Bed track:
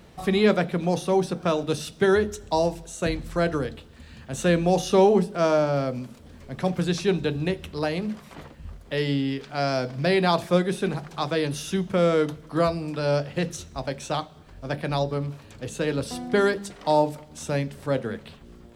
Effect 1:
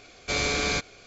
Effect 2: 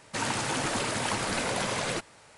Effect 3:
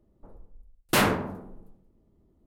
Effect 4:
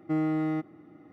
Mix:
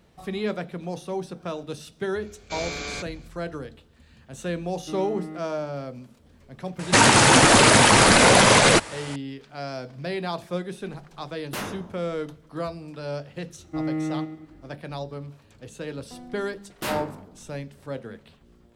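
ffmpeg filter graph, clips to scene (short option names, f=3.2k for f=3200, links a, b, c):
-filter_complex "[4:a]asplit=2[a][b];[3:a]asplit=2[c][d];[0:a]volume=-8.5dB[e];[2:a]alimiter=level_in=20dB:limit=-1dB:release=50:level=0:latency=1[f];[b]aecho=1:1:102|204|306|408:0.335|0.121|0.0434|0.0156[g];[d]flanger=delay=18.5:depth=3.2:speed=0.91[h];[1:a]atrim=end=1.06,asetpts=PTS-STARTPTS,volume=-6.5dB,afade=t=in:d=0.004:c=hsin,afade=t=out:st=1.056:d=0.004:c=hsin,adelay=2220[i];[a]atrim=end=1.12,asetpts=PTS-STARTPTS,volume=-8.5dB,afade=t=in:d=0.004:c=hsin,afade=t=out:st=1.116:d=0.004:c=hsin,adelay=4780[j];[f]atrim=end=2.37,asetpts=PTS-STARTPTS,volume=-3.5dB,afade=t=in:d=0.004:c=hsin,afade=t=out:st=2.366:d=0.004:c=hsin,adelay=6790[k];[c]atrim=end=2.46,asetpts=PTS-STARTPTS,volume=-10.5dB,afade=t=in:d=0.004:c=hsin,afade=t=out:st=2.456:d=0.004:c=hsin,adelay=10600[l];[g]atrim=end=1.12,asetpts=PTS-STARTPTS,volume=-1.5dB,afade=t=in:d=0.004:c=hsin,afade=t=out:st=1.116:d=0.004:c=hsin,adelay=601524S[m];[h]atrim=end=2.46,asetpts=PTS-STARTPTS,volume=-5dB,afade=t=in:d=0.004:c=hsin,afade=t=out:st=2.456:d=0.004:c=hsin,adelay=15890[n];[e][i][j][k][l][m][n]amix=inputs=7:normalize=0"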